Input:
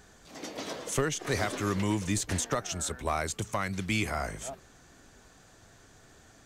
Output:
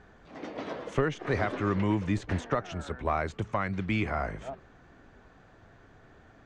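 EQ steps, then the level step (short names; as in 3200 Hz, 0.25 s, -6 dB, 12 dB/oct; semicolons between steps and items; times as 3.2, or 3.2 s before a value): LPF 2100 Hz 12 dB/oct; +2.0 dB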